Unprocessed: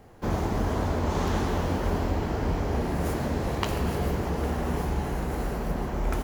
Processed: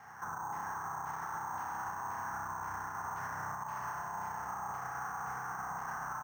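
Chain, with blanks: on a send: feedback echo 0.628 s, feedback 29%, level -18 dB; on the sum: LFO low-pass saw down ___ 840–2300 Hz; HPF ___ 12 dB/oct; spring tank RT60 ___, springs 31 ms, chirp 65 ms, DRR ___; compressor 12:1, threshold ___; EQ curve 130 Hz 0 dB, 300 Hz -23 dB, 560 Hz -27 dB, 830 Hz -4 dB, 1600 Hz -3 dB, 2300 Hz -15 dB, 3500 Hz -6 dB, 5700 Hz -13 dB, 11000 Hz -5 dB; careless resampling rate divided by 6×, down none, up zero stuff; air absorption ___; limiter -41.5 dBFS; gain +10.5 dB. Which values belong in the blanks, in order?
1.9 Hz, 380 Hz, 3.7 s, -3.5 dB, -36 dBFS, 330 m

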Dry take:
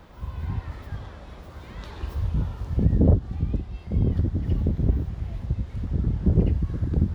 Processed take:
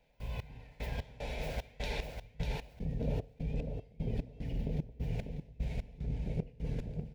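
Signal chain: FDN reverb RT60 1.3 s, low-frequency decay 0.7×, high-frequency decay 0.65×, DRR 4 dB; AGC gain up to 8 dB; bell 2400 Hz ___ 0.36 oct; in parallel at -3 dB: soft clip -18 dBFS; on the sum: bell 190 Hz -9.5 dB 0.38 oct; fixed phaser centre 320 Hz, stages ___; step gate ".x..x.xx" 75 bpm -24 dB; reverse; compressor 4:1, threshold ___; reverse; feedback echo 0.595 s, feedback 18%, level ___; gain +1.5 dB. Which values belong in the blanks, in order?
+10.5 dB, 6, -38 dBFS, -6 dB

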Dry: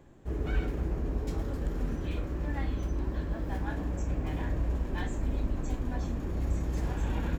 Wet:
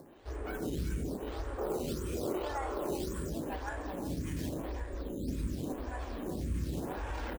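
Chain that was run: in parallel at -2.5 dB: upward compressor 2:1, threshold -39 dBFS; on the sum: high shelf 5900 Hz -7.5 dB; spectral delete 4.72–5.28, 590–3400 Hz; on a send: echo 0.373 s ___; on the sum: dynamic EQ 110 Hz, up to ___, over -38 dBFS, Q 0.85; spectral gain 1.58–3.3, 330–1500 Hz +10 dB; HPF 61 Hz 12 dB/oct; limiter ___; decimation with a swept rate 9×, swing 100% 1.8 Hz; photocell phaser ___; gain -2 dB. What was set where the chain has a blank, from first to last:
-7 dB, -4 dB, -22 dBFS, 0.88 Hz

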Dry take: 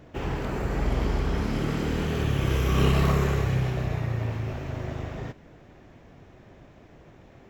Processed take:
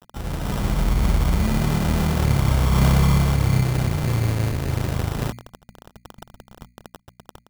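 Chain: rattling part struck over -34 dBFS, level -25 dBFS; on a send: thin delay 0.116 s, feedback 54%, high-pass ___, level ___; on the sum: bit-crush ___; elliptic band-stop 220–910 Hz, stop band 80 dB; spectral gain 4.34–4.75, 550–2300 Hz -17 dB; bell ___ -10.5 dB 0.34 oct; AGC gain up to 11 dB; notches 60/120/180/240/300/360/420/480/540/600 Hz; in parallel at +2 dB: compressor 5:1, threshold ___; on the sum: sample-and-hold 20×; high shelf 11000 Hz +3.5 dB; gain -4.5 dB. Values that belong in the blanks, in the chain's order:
4700 Hz, -12.5 dB, 7-bit, 1000 Hz, -26 dBFS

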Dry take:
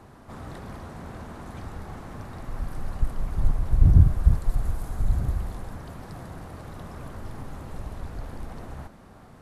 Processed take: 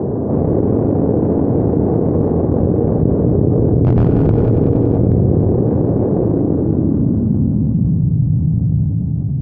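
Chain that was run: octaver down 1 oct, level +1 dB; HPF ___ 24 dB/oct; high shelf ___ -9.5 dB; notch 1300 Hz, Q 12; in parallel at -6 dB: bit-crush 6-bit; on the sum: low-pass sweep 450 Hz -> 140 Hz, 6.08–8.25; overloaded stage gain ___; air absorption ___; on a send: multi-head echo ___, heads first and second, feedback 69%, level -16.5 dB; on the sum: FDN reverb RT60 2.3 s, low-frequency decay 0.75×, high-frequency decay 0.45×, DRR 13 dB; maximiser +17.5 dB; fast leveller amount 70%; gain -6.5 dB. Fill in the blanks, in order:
98 Hz, 2000 Hz, 11 dB, 95 m, 94 ms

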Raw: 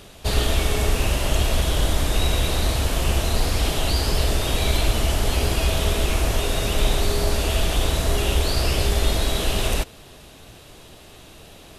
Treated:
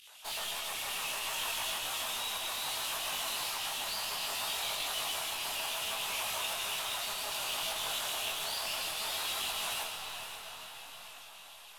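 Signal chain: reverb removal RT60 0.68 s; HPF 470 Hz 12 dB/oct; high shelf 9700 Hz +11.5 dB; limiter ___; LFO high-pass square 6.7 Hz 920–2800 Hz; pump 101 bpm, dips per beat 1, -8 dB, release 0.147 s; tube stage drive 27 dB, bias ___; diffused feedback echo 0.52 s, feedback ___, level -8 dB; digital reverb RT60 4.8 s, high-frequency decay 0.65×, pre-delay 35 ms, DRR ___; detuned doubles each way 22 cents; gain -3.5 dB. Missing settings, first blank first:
-18 dBFS, 0.45, 44%, 0.5 dB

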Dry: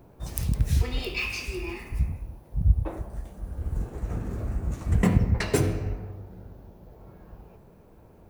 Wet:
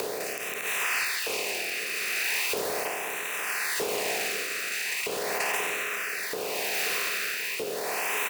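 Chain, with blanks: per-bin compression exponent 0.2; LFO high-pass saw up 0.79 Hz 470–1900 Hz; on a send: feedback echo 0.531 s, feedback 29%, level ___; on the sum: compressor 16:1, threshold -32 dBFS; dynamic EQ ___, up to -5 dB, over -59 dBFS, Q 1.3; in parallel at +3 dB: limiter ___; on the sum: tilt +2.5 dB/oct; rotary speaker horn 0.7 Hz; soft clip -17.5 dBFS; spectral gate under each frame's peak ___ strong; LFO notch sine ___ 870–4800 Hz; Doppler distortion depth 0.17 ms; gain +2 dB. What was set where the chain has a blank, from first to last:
-12.5 dB, 9800 Hz, -27 dBFS, -40 dB, 0.39 Hz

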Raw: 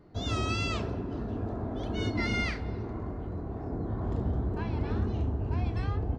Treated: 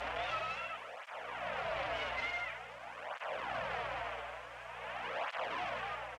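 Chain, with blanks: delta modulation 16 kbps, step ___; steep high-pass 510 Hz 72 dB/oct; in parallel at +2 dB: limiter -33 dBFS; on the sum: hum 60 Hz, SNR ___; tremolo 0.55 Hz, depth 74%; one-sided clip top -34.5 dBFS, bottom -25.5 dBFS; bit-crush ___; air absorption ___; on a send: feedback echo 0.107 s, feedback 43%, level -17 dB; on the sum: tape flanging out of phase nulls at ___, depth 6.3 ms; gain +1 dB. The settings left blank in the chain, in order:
-30 dBFS, 18 dB, 9-bit, 78 m, 0.47 Hz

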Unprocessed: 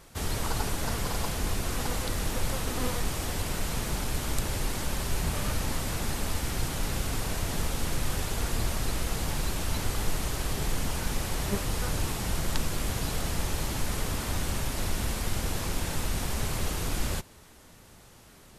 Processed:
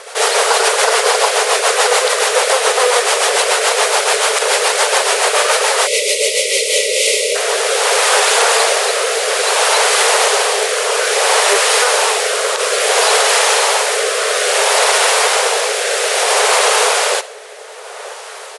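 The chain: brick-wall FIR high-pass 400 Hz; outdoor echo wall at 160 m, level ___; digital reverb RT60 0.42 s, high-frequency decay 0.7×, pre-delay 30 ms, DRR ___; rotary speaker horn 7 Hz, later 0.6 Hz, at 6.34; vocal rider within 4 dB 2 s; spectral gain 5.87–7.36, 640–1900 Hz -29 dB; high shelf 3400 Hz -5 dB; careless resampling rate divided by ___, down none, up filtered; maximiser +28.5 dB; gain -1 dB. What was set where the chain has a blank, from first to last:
-17 dB, 16.5 dB, 2×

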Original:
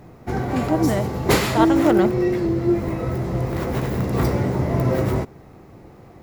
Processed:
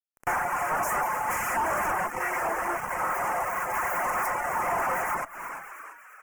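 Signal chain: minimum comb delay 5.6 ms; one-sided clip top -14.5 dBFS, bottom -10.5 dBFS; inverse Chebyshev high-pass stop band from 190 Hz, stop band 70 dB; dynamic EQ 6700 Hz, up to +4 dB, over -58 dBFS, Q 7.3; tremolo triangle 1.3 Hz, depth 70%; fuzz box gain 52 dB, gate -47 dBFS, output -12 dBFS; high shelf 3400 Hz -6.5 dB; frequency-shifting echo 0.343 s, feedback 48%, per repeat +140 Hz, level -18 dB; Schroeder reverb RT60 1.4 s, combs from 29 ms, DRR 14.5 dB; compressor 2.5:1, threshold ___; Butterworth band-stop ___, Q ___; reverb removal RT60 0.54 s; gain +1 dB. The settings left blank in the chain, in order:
-30 dBFS, 3900 Hz, 0.79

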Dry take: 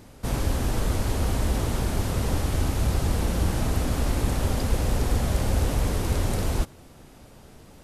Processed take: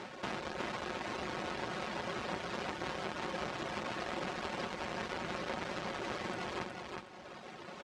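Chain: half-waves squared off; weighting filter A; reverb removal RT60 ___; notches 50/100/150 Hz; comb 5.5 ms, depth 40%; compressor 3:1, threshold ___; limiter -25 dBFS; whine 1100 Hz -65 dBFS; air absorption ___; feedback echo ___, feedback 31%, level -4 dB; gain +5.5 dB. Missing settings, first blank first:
1.7 s, -45 dBFS, 110 m, 0.365 s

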